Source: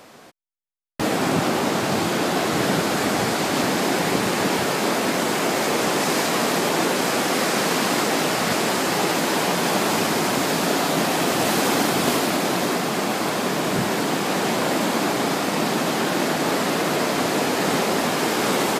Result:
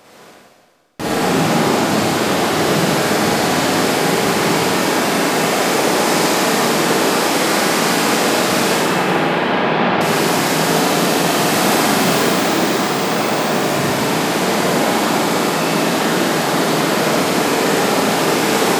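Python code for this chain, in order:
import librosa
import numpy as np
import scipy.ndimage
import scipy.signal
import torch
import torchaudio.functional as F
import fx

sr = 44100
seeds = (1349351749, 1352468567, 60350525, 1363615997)

y = fx.lowpass(x, sr, hz=3300.0, slope=24, at=(8.76, 10.01))
y = fx.resample_bad(y, sr, factor=2, down='filtered', up='hold', at=(12.0, 13.52))
y = fx.rev_schroeder(y, sr, rt60_s=1.8, comb_ms=38, drr_db=-6.0)
y = y * 10.0 ** (-1.0 / 20.0)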